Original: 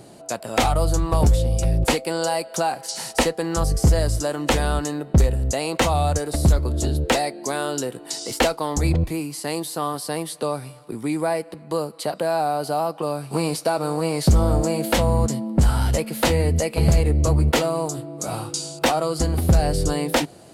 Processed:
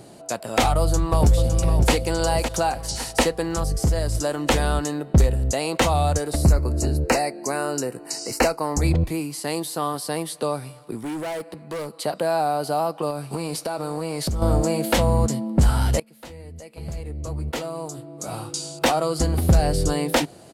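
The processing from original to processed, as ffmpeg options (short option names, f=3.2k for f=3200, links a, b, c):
-filter_complex "[0:a]asplit=2[a][b];[b]afade=t=in:st=0.81:d=0.01,afade=t=out:st=1.92:d=0.01,aecho=0:1:560|1120|1680|2240|2800:0.398107|0.159243|0.0636971|0.0254789|0.0101915[c];[a][c]amix=inputs=2:normalize=0,asettb=1/sr,asplit=3[d][e][f];[d]atrim=end=3.434[g];[e]atrim=start=3.43:end=4.15,asetpts=PTS-STARTPTS,afade=t=in:d=0.004:c=qsin,afade=t=out:st=0.716:d=0.004:c=qsin,acompressor=threshold=-24dB:ratio=1.5:attack=3.2:release=140:knee=1:detection=peak[h];[f]atrim=start=4.146[i];[g][h]acrossfade=d=0.004:c1=hsin:c2=qsin[j];[j][i]acrossfade=d=0.004:c1=qsin:c2=hsin,asettb=1/sr,asplit=3[k][l][m];[k]atrim=end=6.434[n];[l]atrim=start=6.43:end=8.82,asetpts=PTS-STARTPTS,afade=t=in:d=0.004:c=qsin,afade=t=out:st=2.386:d=0.004:c=qsin,asuperstop=centerf=3400:order=4:qfactor=2.4[o];[m]atrim=start=8.816[p];[n][o]acrossfade=d=0.004:c1=hsin:c2=qsin[q];[q][p]acrossfade=d=0.004:c1=qsin:c2=hsin,asettb=1/sr,asplit=3[r][s][t];[r]atrim=end=10.964[u];[s]atrim=start=10.96:end=11.91,asetpts=PTS-STARTPTS,afade=t=in:d=0.004:c=qsin,afade=t=out:st=0.946:d=0.004:c=qsin,volume=27dB,asoftclip=hard,volume=-27dB[v];[t]atrim=start=11.906[w];[u][v]acrossfade=d=0.004:c1=hsin:c2=qsin[x];[x][w]acrossfade=d=0.004:c1=qsin:c2=hsin,asettb=1/sr,asplit=3[y][z][aa];[y]atrim=end=13.104[ab];[z]atrim=start=13.1:end=14.42,asetpts=PTS-STARTPTS,afade=t=in:d=0.004:c=qsin,afade=t=out:st=1.316:d=0.004:c=qsin,acompressor=threshold=-23dB:ratio=6:attack=3.2:release=140:knee=1:detection=peak[ac];[aa]atrim=start=14.416[ad];[ab][ac]acrossfade=d=0.004:c1=hsin:c2=qsin[ae];[ae][ad]acrossfade=d=0.004:c1=qsin:c2=hsin,asplit=2[af][ag];[af]atrim=end=16,asetpts=PTS-STARTPTS,afade=t=out:st=15.996:d=0.004:c=hsin:silence=0.0749894[ah];[ag]atrim=start=16,asetpts=PTS-STARTPTS,afade=t=in:d=2.91:c=qua:silence=0.0749894[ai];[ah][ai]concat=n=2:v=0:a=1"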